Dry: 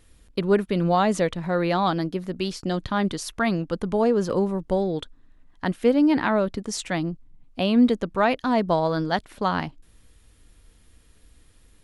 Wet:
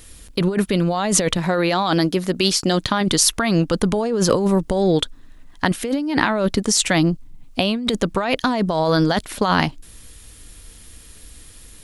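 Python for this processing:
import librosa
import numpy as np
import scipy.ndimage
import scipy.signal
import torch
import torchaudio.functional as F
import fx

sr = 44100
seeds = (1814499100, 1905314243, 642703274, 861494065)

y = fx.high_shelf(x, sr, hz=3400.0, db=10.5)
y = fx.over_compress(y, sr, threshold_db=-25.0, ratio=-1.0)
y = fx.low_shelf(y, sr, hz=120.0, db=-8.5, at=(1.37, 3.01))
y = y * 10.0 ** (7.0 / 20.0)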